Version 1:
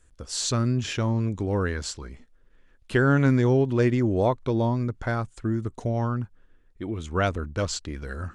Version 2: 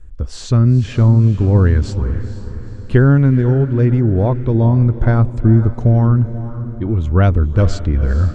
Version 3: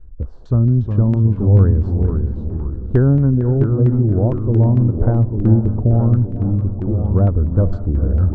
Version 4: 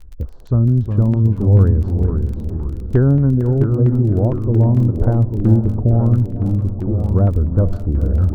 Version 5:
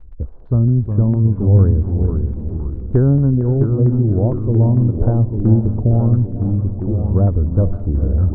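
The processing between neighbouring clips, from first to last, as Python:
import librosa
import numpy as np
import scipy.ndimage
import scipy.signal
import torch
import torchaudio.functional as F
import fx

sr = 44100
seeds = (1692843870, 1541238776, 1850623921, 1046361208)

y1 = fx.rider(x, sr, range_db=4, speed_s=0.5)
y1 = fx.riaa(y1, sr, side='playback')
y1 = fx.echo_diffused(y1, sr, ms=472, feedback_pct=46, wet_db=-12.5)
y1 = y1 * librosa.db_to_amplitude(2.5)
y2 = fx.peak_eq(y1, sr, hz=2300.0, db=-15.0, octaves=1.1)
y2 = fx.filter_lfo_lowpass(y2, sr, shape='saw_down', hz=4.4, low_hz=500.0, high_hz=2000.0, q=0.86)
y2 = fx.echo_pitch(y2, sr, ms=298, semitones=-2, count=2, db_per_echo=-6.0)
y2 = y2 * librosa.db_to_amplitude(-2.5)
y3 = fx.dmg_crackle(y2, sr, seeds[0], per_s=22.0, level_db=-30.0)
y4 = scipy.signal.sosfilt(scipy.signal.butter(2, 1100.0, 'lowpass', fs=sr, output='sos'), y3)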